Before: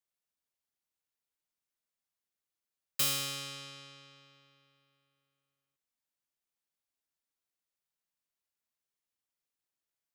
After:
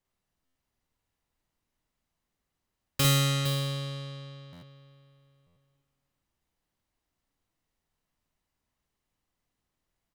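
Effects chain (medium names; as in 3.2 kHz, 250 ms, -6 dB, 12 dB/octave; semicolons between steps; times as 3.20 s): tilt EQ -3 dB/octave; multi-tap echo 46/49/50/70/460 ms -16.5/-3/-6.5/-18.5/-8.5 dB; buffer glitch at 0.45/4.52/5.46 s, samples 512, times 8; trim +9 dB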